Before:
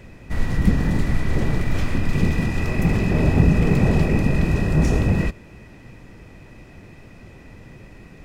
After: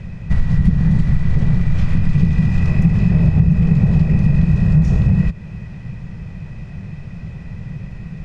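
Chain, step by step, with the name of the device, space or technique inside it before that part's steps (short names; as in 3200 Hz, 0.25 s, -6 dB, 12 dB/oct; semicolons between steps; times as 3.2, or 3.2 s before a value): jukebox (LPF 6200 Hz 12 dB/oct; resonant low shelf 220 Hz +8.5 dB, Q 3; compressor 5:1, threshold -14 dBFS, peak gain reduction 14.5 dB); gain +3.5 dB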